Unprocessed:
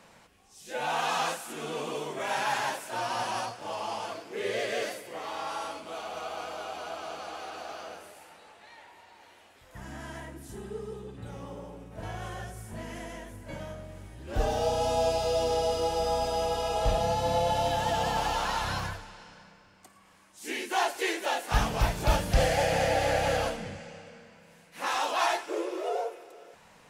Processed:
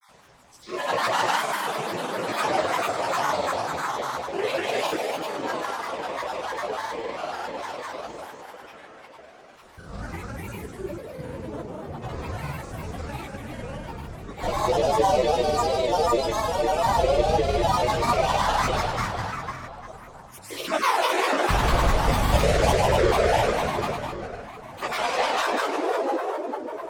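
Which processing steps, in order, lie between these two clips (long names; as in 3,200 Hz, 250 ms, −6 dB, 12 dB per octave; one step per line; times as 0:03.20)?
time-frequency cells dropped at random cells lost 37%
dense smooth reverb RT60 3.7 s, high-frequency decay 0.6×, DRR −6 dB
granular cloud, pitch spread up and down by 7 semitones
level +2 dB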